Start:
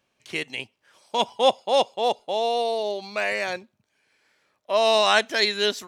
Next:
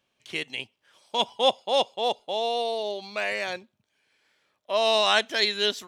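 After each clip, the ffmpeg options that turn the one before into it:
-af "equalizer=f=3.3k:w=3:g=5.5,volume=-3.5dB"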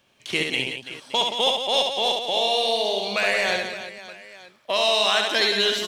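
-filter_complex "[0:a]acrossover=split=1600|5900[a][b][c];[a]acompressor=threshold=-36dB:ratio=4[d];[b]acompressor=threshold=-33dB:ratio=4[e];[c]acompressor=threshold=-48dB:ratio=4[f];[d][e][f]amix=inputs=3:normalize=0,asplit=2[g][h];[h]asoftclip=type=hard:threshold=-32.5dB,volume=-12dB[i];[g][i]amix=inputs=2:normalize=0,aecho=1:1:70|175|332.5|568.8|923.1:0.631|0.398|0.251|0.158|0.1,volume=8.5dB"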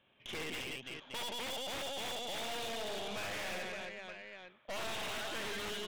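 -af "aeval=exprs='(mod(5.62*val(0)+1,2)-1)/5.62':c=same,aresample=8000,aresample=44100,aeval=exprs='(tanh(56.2*val(0)+0.6)-tanh(0.6))/56.2':c=same,volume=-4dB"

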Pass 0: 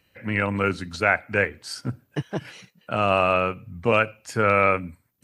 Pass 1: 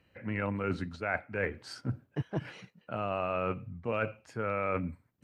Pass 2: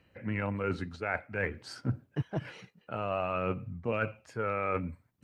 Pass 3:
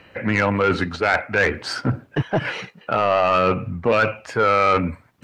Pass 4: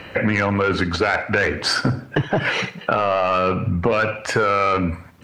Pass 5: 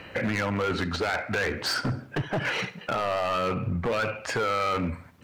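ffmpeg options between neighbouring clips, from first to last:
-af "lowpass=f=1.5k:p=1,areverse,acompressor=threshold=-29dB:ratio=6,areverse"
-af "aphaser=in_gain=1:out_gain=1:delay=2.5:decay=0.25:speed=0.54:type=sinusoidal"
-filter_complex "[0:a]asplit=2[a][b];[b]alimiter=level_in=1dB:limit=-24dB:level=0:latency=1,volume=-1dB,volume=3dB[c];[a][c]amix=inputs=2:normalize=0,asplit=2[d][e];[e]highpass=f=720:p=1,volume=11dB,asoftclip=type=tanh:threshold=-12.5dB[f];[d][f]amix=inputs=2:normalize=0,lowpass=f=2.7k:p=1,volume=-6dB,asoftclip=type=tanh:threshold=-17dB,volume=8.5dB"
-filter_complex "[0:a]asplit=2[a][b];[b]alimiter=limit=-17dB:level=0:latency=1:release=35,volume=-2.5dB[c];[a][c]amix=inputs=2:normalize=0,acompressor=threshold=-23dB:ratio=6,aecho=1:1:69|138|207|276:0.119|0.0523|0.023|0.0101,volume=6.5dB"
-af "asoftclip=type=hard:threshold=-16dB,volume=-6.5dB"

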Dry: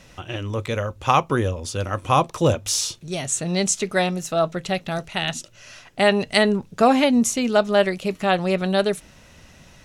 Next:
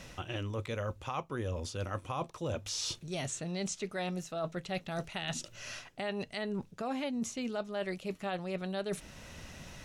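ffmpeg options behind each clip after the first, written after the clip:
-filter_complex "[0:a]acrossover=split=6000[a][b];[b]acompressor=threshold=-41dB:ratio=4:attack=1:release=60[c];[a][c]amix=inputs=2:normalize=0,alimiter=limit=-13dB:level=0:latency=1:release=491,areverse,acompressor=threshold=-34dB:ratio=6,areverse"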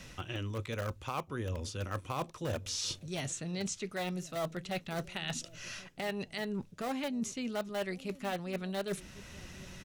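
-filter_complex "[0:a]acrossover=split=570|800[a][b][c];[a]aecho=1:1:1094:0.141[d];[b]acrusher=bits=6:mix=0:aa=0.000001[e];[d][e][c]amix=inputs=3:normalize=0"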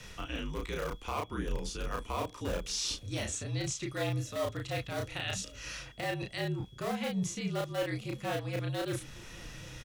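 -filter_complex "[0:a]asplit=2[a][b];[b]adelay=33,volume=-2dB[c];[a][c]amix=inputs=2:normalize=0,aeval=exprs='val(0)+0.001*sin(2*PI*3400*n/s)':c=same,afreqshift=-54"

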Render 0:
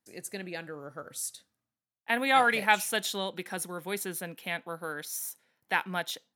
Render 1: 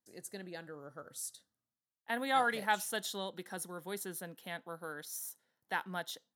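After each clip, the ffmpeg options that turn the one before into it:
-af "equalizer=f=2.4k:t=o:w=0.32:g=-13,volume=-6.5dB"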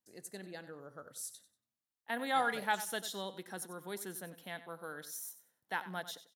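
-af "aecho=1:1:94|188|282:0.2|0.0459|0.0106,volume=-1.5dB"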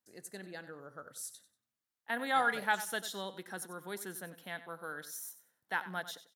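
-af "equalizer=f=1.5k:t=o:w=0.77:g=4.5"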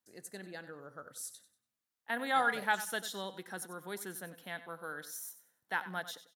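-af "aecho=1:1:98|196|294:0.0668|0.0281|0.0118"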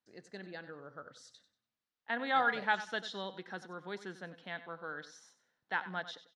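-af "lowpass=f=5k:w=0.5412,lowpass=f=5k:w=1.3066"

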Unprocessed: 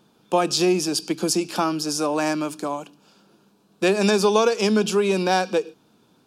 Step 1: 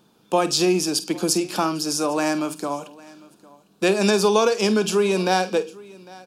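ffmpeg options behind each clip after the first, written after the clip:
-filter_complex "[0:a]highshelf=f=7.8k:g=4,asplit=2[a][b];[b]adelay=49,volume=-14dB[c];[a][c]amix=inputs=2:normalize=0,aecho=1:1:803:0.075"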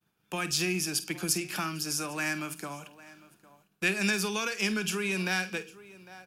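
-filter_complex "[0:a]agate=range=-33dB:threshold=-51dB:ratio=3:detection=peak,equalizer=f=250:t=o:w=1:g=-12,equalizer=f=500:t=o:w=1:g=-10,equalizer=f=1k:t=o:w=1:g=-8,equalizer=f=2k:t=o:w=1:g=5,equalizer=f=4k:t=o:w=1:g=-10,equalizer=f=8k:t=o:w=1:g=-6,acrossover=split=330|1300[a][b][c];[b]acompressor=threshold=-43dB:ratio=6[d];[a][d][c]amix=inputs=3:normalize=0,volume=1.5dB"

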